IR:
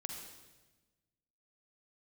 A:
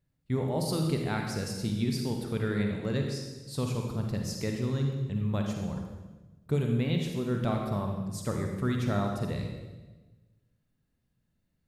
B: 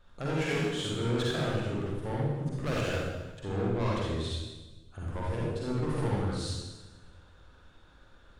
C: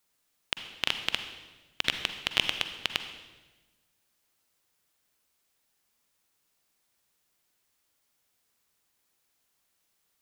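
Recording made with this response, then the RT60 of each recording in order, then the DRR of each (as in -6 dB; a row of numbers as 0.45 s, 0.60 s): A; 1.2 s, 1.2 s, 1.2 s; 2.0 dB, -6.0 dB, 7.5 dB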